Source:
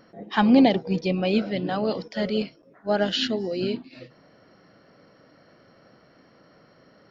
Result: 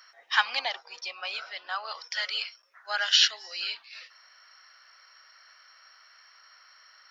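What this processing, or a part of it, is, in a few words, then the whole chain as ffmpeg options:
headphones lying on a table: -filter_complex "[0:a]asettb=1/sr,asplit=3[a][b][c];[a]atrim=end=0.594[d];[b]atrim=start=0.59:end=2.04,asetpts=PTS-STARTPTS,afade=t=in:d=0.004:c=qsin,afade=t=out:st=1.446:d=0.004:c=qsin,highshelf=f=1.6k:t=q:w=1.5:g=-6[e];[c]atrim=start=2.036[f];[d][e]acrossfade=d=0.004:c1=hsin:c2=qsin[g];[g][f]acrossfade=d=0.004:c1=qsin:c2=hsin,highpass=f=1.2k:w=0.5412,highpass=f=1.2k:w=1.3066,equalizer=f=5.6k:t=o:w=0.29:g=8.5,volume=5.5dB"

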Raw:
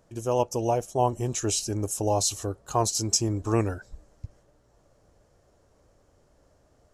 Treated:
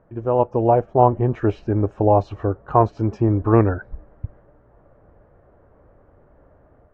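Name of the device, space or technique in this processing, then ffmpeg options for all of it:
action camera in a waterproof case: -af "lowpass=f=1.8k:w=0.5412,lowpass=f=1.8k:w=1.3066,dynaudnorm=f=340:g=3:m=4dB,volume=5.5dB" -ar 44100 -c:a aac -b:a 96k

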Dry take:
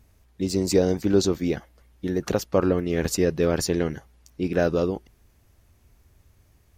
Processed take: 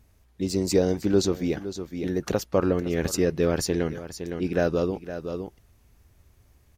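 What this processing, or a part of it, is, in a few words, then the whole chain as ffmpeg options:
ducked delay: -filter_complex "[0:a]asplit=3[a][b][c];[b]adelay=512,volume=-5dB[d];[c]apad=whole_len=321408[e];[d][e]sidechaincompress=threshold=-31dB:ratio=4:attack=5.2:release=568[f];[a][f]amix=inputs=2:normalize=0,volume=-1.5dB"

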